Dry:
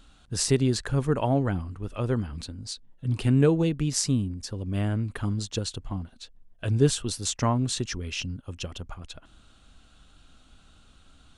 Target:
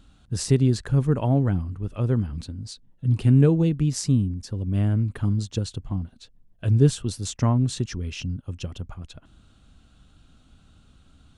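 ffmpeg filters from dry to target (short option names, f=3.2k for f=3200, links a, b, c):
-af "equalizer=f=120:t=o:w=3:g=10,volume=-4dB"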